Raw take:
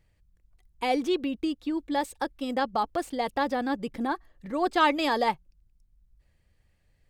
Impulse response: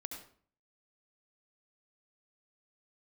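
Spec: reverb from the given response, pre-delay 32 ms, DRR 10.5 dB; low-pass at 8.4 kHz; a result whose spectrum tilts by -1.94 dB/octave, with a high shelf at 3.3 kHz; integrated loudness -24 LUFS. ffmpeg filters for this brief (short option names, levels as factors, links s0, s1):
-filter_complex "[0:a]lowpass=8400,highshelf=f=3300:g=-3,asplit=2[s0][s1];[1:a]atrim=start_sample=2205,adelay=32[s2];[s1][s2]afir=irnorm=-1:irlink=0,volume=0.376[s3];[s0][s3]amix=inputs=2:normalize=0,volume=1.68"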